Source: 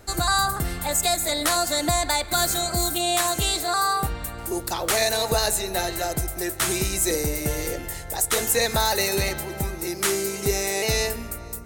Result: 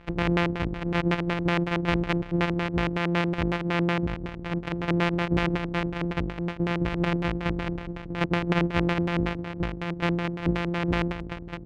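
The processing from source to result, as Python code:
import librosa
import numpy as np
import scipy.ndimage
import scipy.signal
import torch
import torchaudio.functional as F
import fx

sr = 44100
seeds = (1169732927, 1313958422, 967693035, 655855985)

y = np.r_[np.sort(x[:len(x) // 256 * 256].reshape(-1, 256), axis=1).ravel(), x[len(x) // 256 * 256:]]
y = fx.filter_lfo_lowpass(y, sr, shape='square', hz=5.4, low_hz=330.0, high_hz=2500.0, q=1.6)
y = y * librosa.db_to_amplitude(-2.5)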